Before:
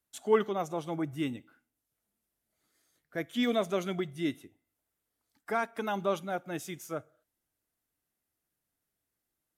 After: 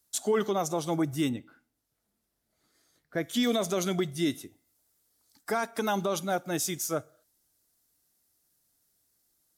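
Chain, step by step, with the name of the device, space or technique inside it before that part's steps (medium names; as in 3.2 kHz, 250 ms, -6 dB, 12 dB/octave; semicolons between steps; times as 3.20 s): over-bright horn tweeter (resonant high shelf 3.6 kHz +7.5 dB, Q 1.5; peak limiter -24 dBFS, peak gain reduction 10.5 dB); 1.29–3.23 s: tone controls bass +1 dB, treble -12 dB; trim +6 dB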